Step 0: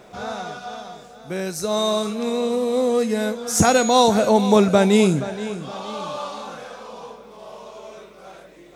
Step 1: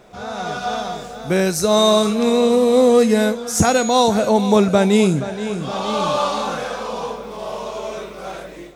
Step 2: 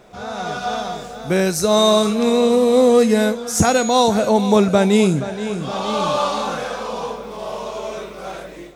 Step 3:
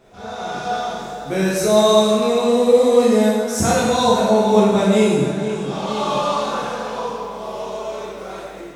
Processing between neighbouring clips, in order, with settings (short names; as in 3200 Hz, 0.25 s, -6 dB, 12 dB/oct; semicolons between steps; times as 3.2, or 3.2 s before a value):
low shelf 67 Hz +8 dB; AGC gain up to 13 dB; gain -2 dB
nothing audible
plate-style reverb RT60 1.5 s, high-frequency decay 0.75×, DRR -6.5 dB; gain -8 dB